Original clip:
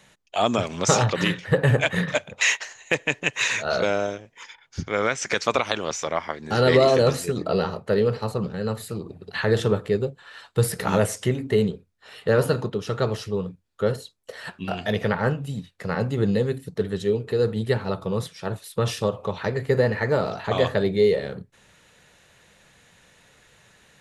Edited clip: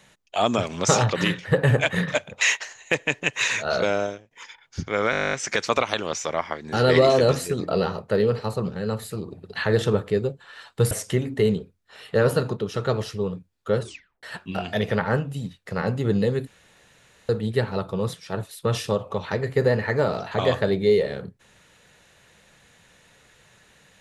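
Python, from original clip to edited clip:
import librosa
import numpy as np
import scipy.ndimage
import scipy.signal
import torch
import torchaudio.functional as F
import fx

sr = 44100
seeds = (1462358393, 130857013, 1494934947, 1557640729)

y = fx.edit(x, sr, fx.fade_out_to(start_s=4.03, length_s=0.28, floor_db=-17.0),
    fx.stutter(start_s=5.11, slice_s=0.02, count=12),
    fx.cut(start_s=10.69, length_s=0.35),
    fx.tape_stop(start_s=13.93, length_s=0.43),
    fx.room_tone_fill(start_s=16.6, length_s=0.82), tone=tone)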